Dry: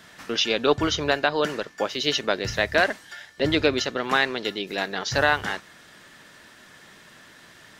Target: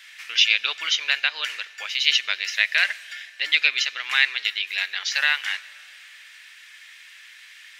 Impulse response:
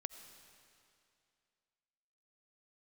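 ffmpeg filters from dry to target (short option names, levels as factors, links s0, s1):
-filter_complex "[0:a]highpass=f=2300:t=q:w=3.1,asplit=2[s0][s1];[1:a]atrim=start_sample=2205[s2];[s1][s2]afir=irnorm=-1:irlink=0,volume=0.473[s3];[s0][s3]amix=inputs=2:normalize=0,volume=0.841"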